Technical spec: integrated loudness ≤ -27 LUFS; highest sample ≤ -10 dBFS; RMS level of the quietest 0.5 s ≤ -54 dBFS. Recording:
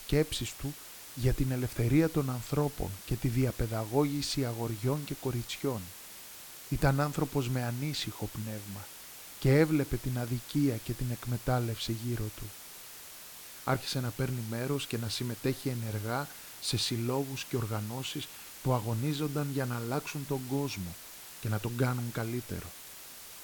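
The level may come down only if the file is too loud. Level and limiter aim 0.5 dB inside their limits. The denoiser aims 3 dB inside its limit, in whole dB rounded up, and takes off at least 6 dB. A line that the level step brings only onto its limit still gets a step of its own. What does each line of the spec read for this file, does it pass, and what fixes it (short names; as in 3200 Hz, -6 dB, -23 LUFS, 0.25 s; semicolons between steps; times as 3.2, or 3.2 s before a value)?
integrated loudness -33.0 LUFS: OK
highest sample -11.5 dBFS: OK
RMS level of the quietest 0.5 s -48 dBFS: fail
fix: denoiser 9 dB, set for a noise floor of -48 dBFS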